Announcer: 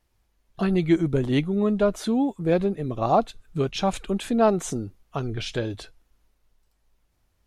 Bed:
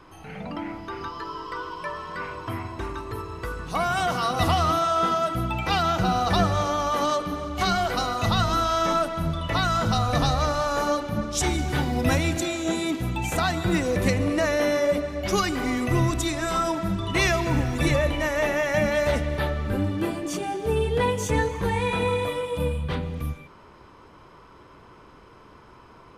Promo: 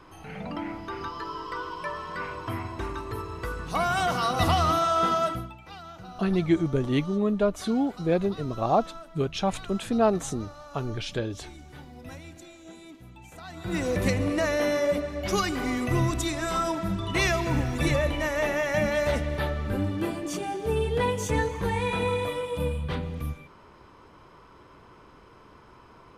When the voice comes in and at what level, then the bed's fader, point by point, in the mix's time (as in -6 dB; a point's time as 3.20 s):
5.60 s, -2.5 dB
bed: 5.30 s -1 dB
5.58 s -20.5 dB
13.42 s -20.5 dB
13.83 s -2.5 dB